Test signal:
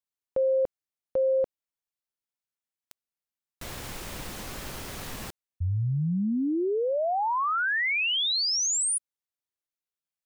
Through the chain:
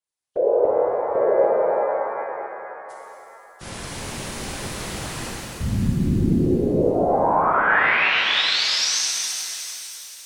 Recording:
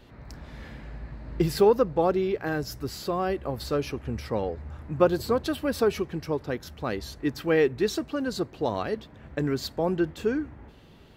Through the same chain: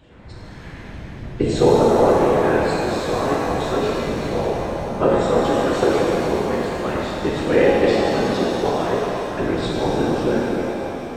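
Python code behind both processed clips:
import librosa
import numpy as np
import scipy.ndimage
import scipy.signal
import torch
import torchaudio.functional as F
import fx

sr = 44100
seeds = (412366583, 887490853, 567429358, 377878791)

y = fx.freq_compress(x, sr, knee_hz=2700.0, ratio=1.5)
y = fx.whisperise(y, sr, seeds[0])
y = fx.rev_shimmer(y, sr, seeds[1], rt60_s=3.4, semitones=7, shimmer_db=-8, drr_db=-5.5)
y = F.gain(torch.from_numpy(y), 1.0).numpy()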